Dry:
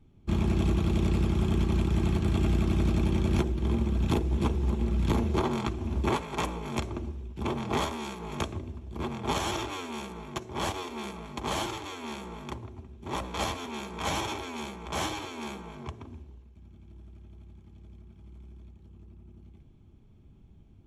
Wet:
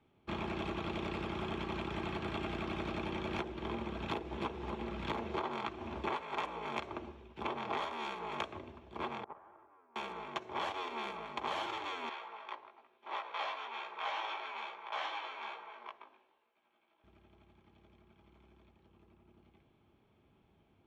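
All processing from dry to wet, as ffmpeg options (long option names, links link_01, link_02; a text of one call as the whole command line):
ffmpeg -i in.wav -filter_complex "[0:a]asettb=1/sr,asplit=3[link_01][link_02][link_03];[link_01]atrim=end=9.244[link_04];[link_02]atrim=start=9.24:end=9.96,asetpts=PTS-STARTPTS,afade=type=in:duration=0.004:curve=qsin,afade=type=out:start_time=0.716:duration=0.004:curve=qsin,lowpass=frequency=1500:width=0.5412,lowpass=frequency=1500:width=1.3066,agate=range=-26dB:threshold=-25dB:ratio=16:release=100:detection=peak[link_05];[link_03]atrim=start=9.956[link_06];[link_04][link_05]acrossfade=duration=0.004:curve1=hsin:curve2=qsin[link_07];[link_07][link_06]acrossfade=duration=0.004:curve1=qsin:curve2=hsin,asettb=1/sr,asplit=3[link_08][link_09][link_10];[link_08]atrim=end=12.094[link_11];[link_09]atrim=start=12.09:end=17.04,asetpts=PTS-STARTPTS,afade=type=in:duration=0.004:curve=qsin,afade=type=out:start_time=4.946:duration=0.004:curve=qsin,highpass=620,lowpass=4300,flanger=delay=16.5:depth=2.2:speed=1.1[link_12];[link_10]atrim=start=17.036[link_13];[link_11][link_12]acrossfade=duration=0.004:curve1=hsin:curve2=qsin[link_14];[link_14][link_13]acrossfade=duration=0.004:curve1=qsin:curve2=hsin,highpass=frequency=170:poles=1,acrossover=split=450 3900:gain=0.224 1 0.0891[link_15][link_16][link_17];[link_15][link_16][link_17]amix=inputs=3:normalize=0,acompressor=threshold=-37dB:ratio=4,volume=2.5dB" out.wav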